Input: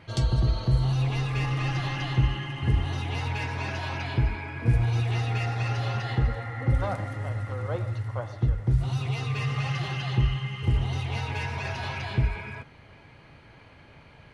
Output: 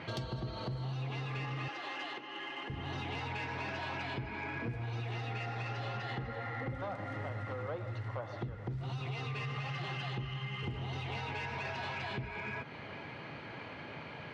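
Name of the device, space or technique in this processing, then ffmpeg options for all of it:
AM radio: -filter_complex "[0:a]highpass=160,lowpass=4.2k,acompressor=threshold=-44dB:ratio=6,asoftclip=type=tanh:threshold=-37.5dB,asettb=1/sr,asplit=3[a][b][c];[a]atrim=end=1.684[d];[b]atrim=start=1.68:end=2.7,asetpts=PTS-STARTPTS,afade=t=in:d=0.004:c=qsin,afade=t=out:st=1.016:d=0.004:c=qsin,highpass=f=310:w=0.5412,highpass=f=310:w=1.3066[e];[c]atrim=start=2.696[f];[d][e]acrossfade=d=0.004:c1=hsin:c2=qsin[g];[g][f]acrossfade=d=0.004:c1=qsin:c2=hsin,volume=8dB"

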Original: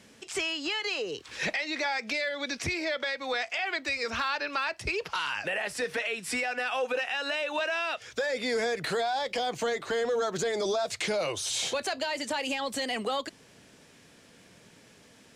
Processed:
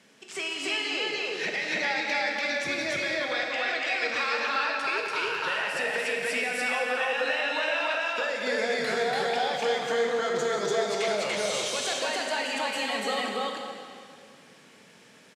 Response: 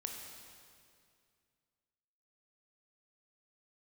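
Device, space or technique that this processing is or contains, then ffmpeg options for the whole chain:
stadium PA: -filter_complex "[0:a]highpass=f=130:w=0.5412,highpass=f=130:w=1.3066,equalizer=f=1.6k:t=o:w=3:g=5,aecho=1:1:177.8|288.6:0.282|1[a];[1:a]atrim=start_sample=2205[b];[a][b]afir=irnorm=-1:irlink=0,asettb=1/sr,asplit=3[c][d][e];[c]atrim=end=4.244[f];[d]atrim=start=4.24:end=5.22,asetpts=PTS-STARTPTS,afade=t=in:d=0.004:c=qsin,afade=t=out:st=0.976:d=0.004:c=qsin,highpass=220[g];[e]atrim=start=5.216[h];[f][g]acrossfade=d=0.004:c1=hsin:c2=qsin[i];[i][h]acrossfade=d=0.004:c1=qsin:c2=hsin,volume=-3dB"

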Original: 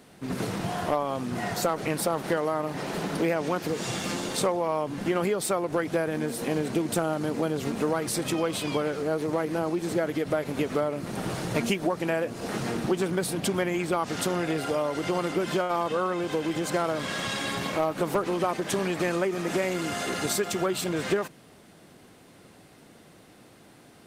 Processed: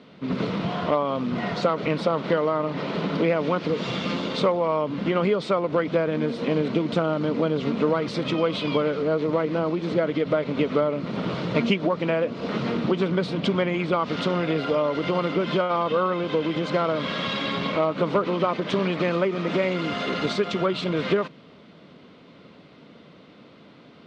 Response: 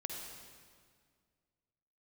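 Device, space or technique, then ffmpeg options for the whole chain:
guitar cabinet: -af "highpass=110,equalizer=f=110:t=q:w=4:g=-8,equalizer=f=350:t=q:w=4:g=-6,equalizer=f=780:t=q:w=4:g=-10,equalizer=f=1.7k:t=q:w=4:g=-9,equalizer=f=2.6k:t=q:w=4:g=-3,lowpass=f=3.8k:w=0.5412,lowpass=f=3.8k:w=1.3066,volume=7dB"

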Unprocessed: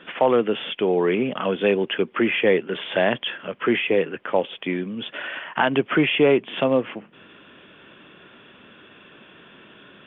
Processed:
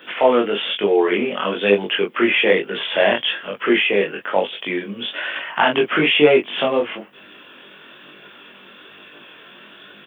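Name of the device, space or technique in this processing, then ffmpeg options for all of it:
double-tracked vocal: -filter_complex "[0:a]aemphasis=mode=production:type=bsi,asplit=2[a][b];[b]adelay=20,volume=-3dB[c];[a][c]amix=inputs=2:normalize=0,flanger=delay=19.5:depth=6:speed=1.1,volume=5.5dB"

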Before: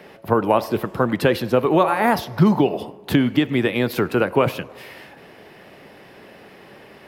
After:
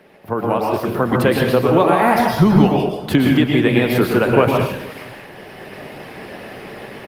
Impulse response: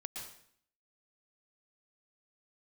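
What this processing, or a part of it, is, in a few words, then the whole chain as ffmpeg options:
speakerphone in a meeting room: -filter_complex "[0:a]asettb=1/sr,asplit=3[a][b][c];[a]atrim=end=0.884[d];[b]atrim=start=0.88:end=1.71,asetpts=PTS-STARTPTS,afade=t=in:d=0.004:c=qsin,afade=t=out:st=0.826:d=0.004:c=qsin,equalizer=f=12k:w=1.8:g=3[e];[c]atrim=start=1.706[f];[d][e]acrossfade=d=0.004:c1=hsin:c2=qsin[g];[g][f]acrossfade=d=0.004:c1=qsin:c2=hsin,aecho=1:1:476:0.0794[h];[1:a]atrim=start_sample=2205[i];[h][i]afir=irnorm=-1:irlink=0,dynaudnorm=f=300:g=5:m=14dB" -ar 48000 -c:a libopus -b:a 24k

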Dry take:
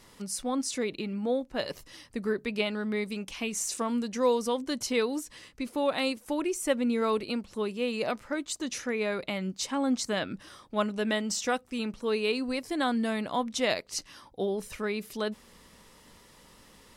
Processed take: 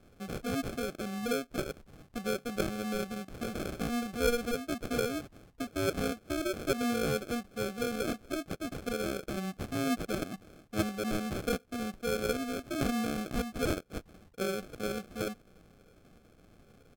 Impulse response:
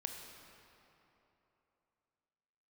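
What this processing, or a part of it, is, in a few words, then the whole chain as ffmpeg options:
crushed at another speed: -af "asetrate=55125,aresample=44100,acrusher=samples=37:mix=1:aa=0.000001,asetrate=35280,aresample=44100,volume=-3.5dB"

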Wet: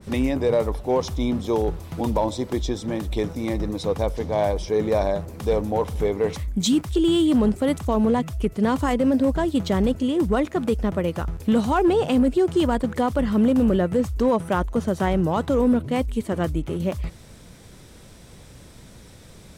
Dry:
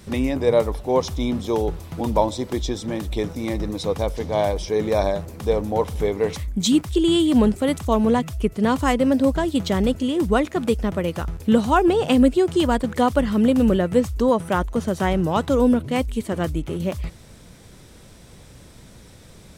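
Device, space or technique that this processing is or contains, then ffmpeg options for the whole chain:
limiter into clipper: -af "alimiter=limit=-11.5dB:level=0:latency=1:release=15,asoftclip=type=hard:threshold=-13dB,adynamicequalizer=threshold=0.01:dfrequency=1800:dqfactor=0.7:tfrequency=1800:tqfactor=0.7:attack=5:release=100:ratio=0.375:range=2:mode=cutabove:tftype=highshelf"

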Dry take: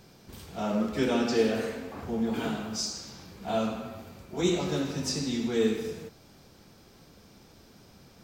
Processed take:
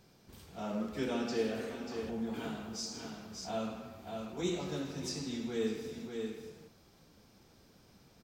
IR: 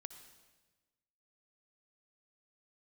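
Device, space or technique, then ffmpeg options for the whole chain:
ducked delay: -filter_complex "[0:a]asplit=3[a][b][c];[b]adelay=589,volume=-5dB[d];[c]apad=whole_len=389082[e];[d][e]sidechaincompress=threshold=-39dB:ratio=8:attack=31:release=123[f];[a][f]amix=inputs=2:normalize=0,volume=-8.5dB"

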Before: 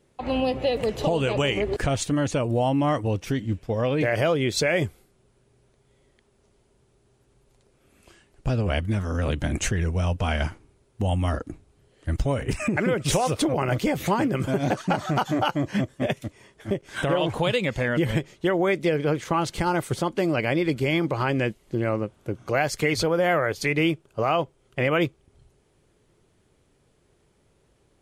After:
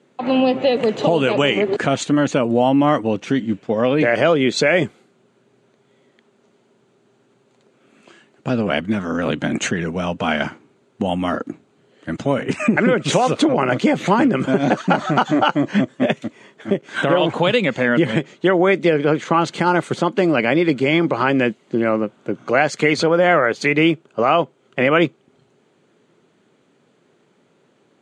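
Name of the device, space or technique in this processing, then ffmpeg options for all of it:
television speaker: -af "highpass=f=160:w=0.5412,highpass=f=160:w=1.3066,equalizer=f=240:t=q:w=4:g=4,equalizer=f=1.4k:t=q:w=4:g=3,equalizer=f=5.3k:t=q:w=4:g=-9,lowpass=f=7k:w=0.5412,lowpass=f=7k:w=1.3066,volume=7dB"

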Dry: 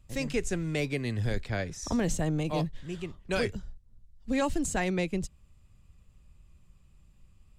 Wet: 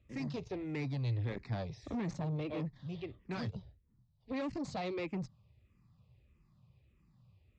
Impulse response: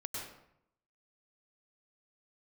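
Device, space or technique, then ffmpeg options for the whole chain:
barber-pole phaser into a guitar amplifier: -filter_complex "[0:a]asettb=1/sr,asplit=3[a][b][c];[a]atrim=end=4.464[d];[b]atrim=start=4.46:end=4.94,asetpts=PTS-STARTPTS,afade=t=in:d=0.004:c=qsin,afade=t=out:st=0.476:d=0.004:c=qsin,equalizer=f=4.5k:t=o:w=0.43:g=9[e];[c]atrim=start=4.936[f];[d][e]acrossfade=d=0.004:c1=hsin:c2=qsin[g];[g][f]acrossfade=d=0.004:c1=qsin:c2=hsin,asplit=2[h][i];[i]afreqshift=-1.6[j];[h][j]amix=inputs=2:normalize=1,asoftclip=type=tanh:threshold=-33.5dB,highpass=88,equalizer=f=120:t=q:w=4:g=8,equalizer=f=1.5k:t=q:w=4:g=-8,equalizer=f=3k:t=q:w=4:g=-6,lowpass=f=4.5k:w=0.5412,lowpass=f=4.5k:w=1.3066"

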